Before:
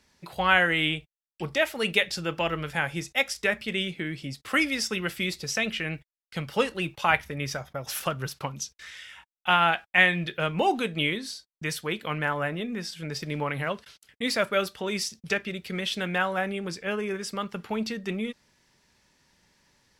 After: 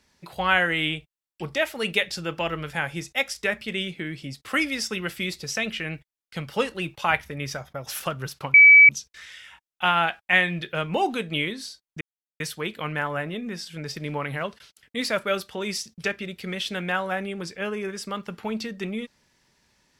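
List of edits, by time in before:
0:08.54: insert tone 2,290 Hz −7.5 dBFS 0.35 s
0:11.66: splice in silence 0.39 s

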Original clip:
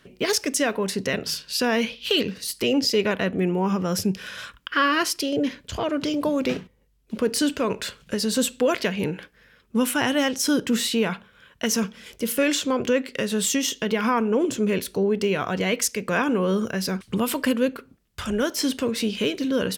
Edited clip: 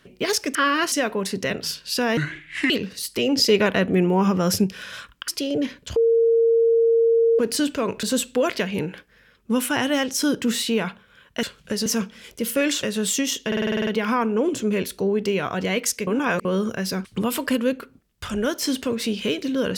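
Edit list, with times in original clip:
0:01.80–0:02.15: play speed 66%
0:02.81–0:04.09: clip gain +4 dB
0:04.73–0:05.10: move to 0:00.55
0:05.78–0:07.21: beep over 459 Hz −14 dBFS
0:07.85–0:08.28: move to 0:11.68
0:12.65–0:13.19: remove
0:13.83: stutter 0.05 s, 9 plays
0:16.03–0:16.41: reverse

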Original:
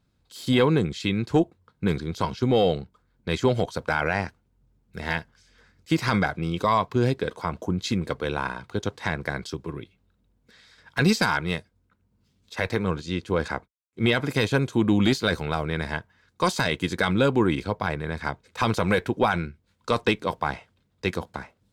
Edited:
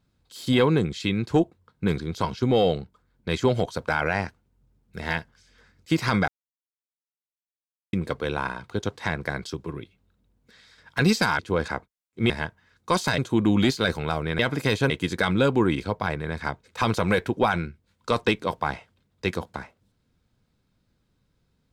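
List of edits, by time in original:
0:06.28–0:07.93: silence
0:11.39–0:13.19: remove
0:14.10–0:14.61: swap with 0:15.82–0:16.70

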